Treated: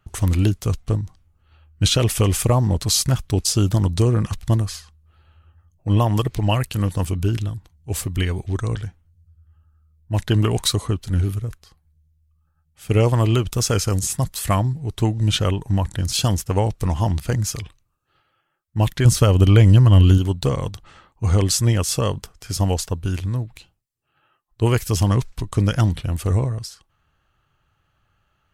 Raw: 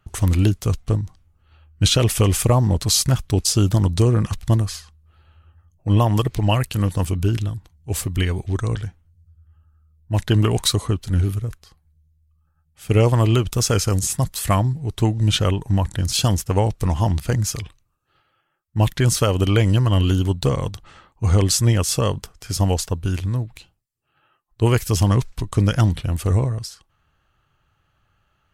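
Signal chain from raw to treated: 19.05–20.18 low shelf 200 Hz +9 dB; gain -1 dB

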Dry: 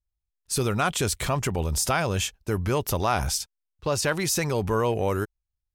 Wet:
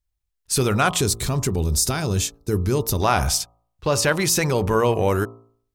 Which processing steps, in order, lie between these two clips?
spectral gain 1–3.01, 470–3500 Hz -9 dB; de-hum 56.75 Hz, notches 23; gain +5.5 dB

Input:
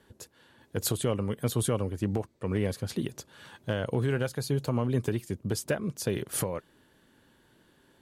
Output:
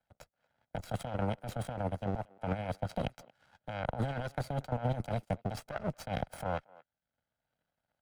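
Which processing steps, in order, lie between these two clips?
minimum comb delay 1.3 ms; power-law curve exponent 2; HPF 890 Hz 6 dB/oct; comb 1.5 ms, depth 37%; negative-ratio compressor -48 dBFS, ratio -1; tilt -4 dB/oct; speakerphone echo 0.23 s, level -24 dB; three-band squash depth 40%; gain +8.5 dB

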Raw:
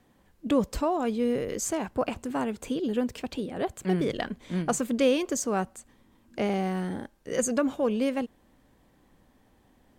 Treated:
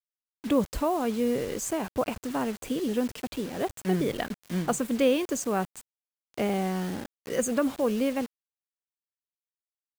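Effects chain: bit-crush 7-bit; dynamic EQ 5400 Hz, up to -4 dB, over -45 dBFS, Q 1.4

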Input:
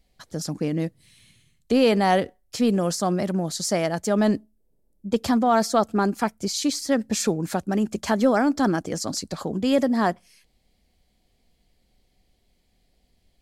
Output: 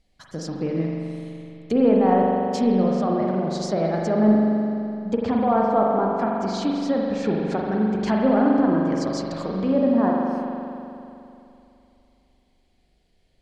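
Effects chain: LPF 9600 Hz 12 dB/oct; treble ducked by the level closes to 1100 Hz, closed at -18.5 dBFS; spring tank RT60 2.8 s, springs 42 ms, chirp 40 ms, DRR -2 dB; gain -2 dB

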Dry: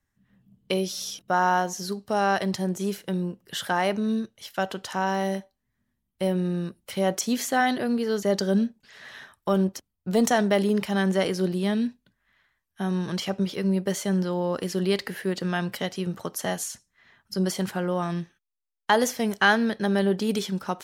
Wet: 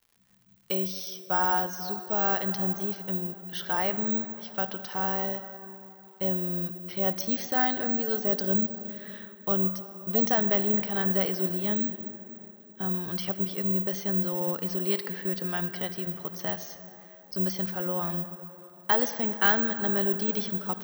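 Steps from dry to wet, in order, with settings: Chebyshev low-pass 6400 Hz, order 8; crackle 260/s -48 dBFS; on a send at -11 dB: reverb RT60 3.3 s, pre-delay 47 ms; on the sum: careless resampling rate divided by 2×, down none, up zero stuff; gain -5.5 dB

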